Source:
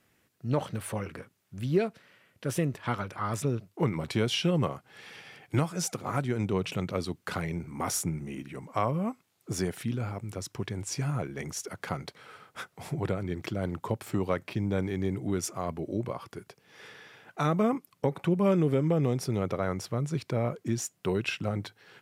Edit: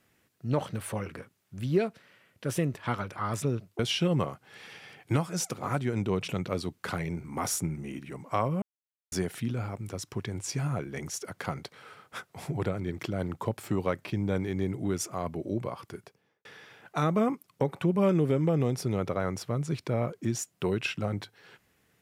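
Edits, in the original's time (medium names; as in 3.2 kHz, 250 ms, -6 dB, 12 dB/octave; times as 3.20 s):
3.79–4.22 s: delete
9.05–9.55 s: mute
16.39–16.88 s: studio fade out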